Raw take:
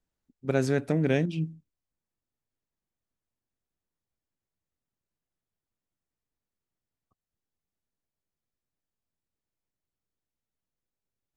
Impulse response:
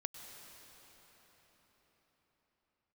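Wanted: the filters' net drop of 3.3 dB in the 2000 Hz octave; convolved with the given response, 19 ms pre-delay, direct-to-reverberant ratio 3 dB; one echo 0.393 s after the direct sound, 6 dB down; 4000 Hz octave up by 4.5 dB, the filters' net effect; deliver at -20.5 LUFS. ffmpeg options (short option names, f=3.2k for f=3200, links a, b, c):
-filter_complex "[0:a]equalizer=f=2k:t=o:g=-6.5,equalizer=f=4k:t=o:g=8,aecho=1:1:393:0.501,asplit=2[a][b];[1:a]atrim=start_sample=2205,adelay=19[c];[b][c]afir=irnorm=-1:irlink=0,volume=-1.5dB[d];[a][d]amix=inputs=2:normalize=0,volume=6dB"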